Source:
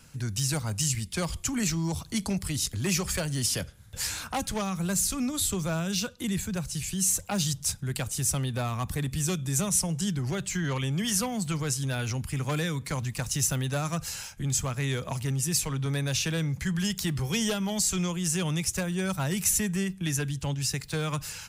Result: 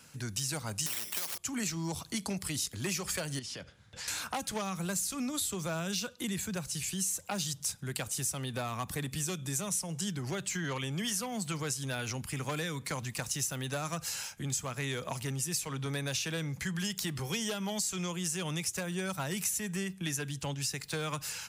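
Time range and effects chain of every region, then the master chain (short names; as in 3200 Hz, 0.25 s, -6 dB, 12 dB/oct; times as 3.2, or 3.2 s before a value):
0.86–1.38 HPF 190 Hz 6 dB/oct + careless resampling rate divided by 8×, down filtered, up zero stuff + spectral compressor 4:1
3.39–4.08 LPF 4800 Hz + compressor 4:1, threshold -38 dBFS
whole clip: HPF 260 Hz 6 dB/oct; compressor 5:1, threshold -31 dBFS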